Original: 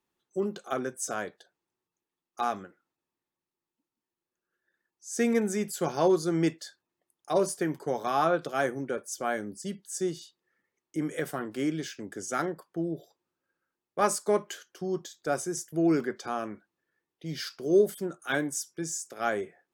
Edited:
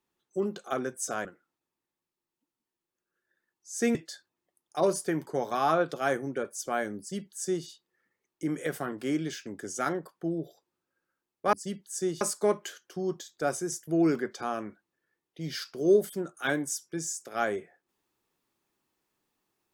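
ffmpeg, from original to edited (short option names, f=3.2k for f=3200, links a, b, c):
-filter_complex "[0:a]asplit=5[a][b][c][d][e];[a]atrim=end=1.252[f];[b]atrim=start=2.618:end=5.322[g];[c]atrim=start=6.478:end=14.062[h];[d]atrim=start=9.518:end=10.202[i];[e]atrim=start=14.058[j];[f][g]acrossfade=d=0.004:c1=hsin:c2=hsin[k];[k][h]acrossfade=d=0.004:c1=hsin:c2=hsin[l];[l][i]acrossfade=d=0.004:c1=hsin:c2=hsin[m];[m][j]acrossfade=d=0.004:c1=hsin:c2=hsin"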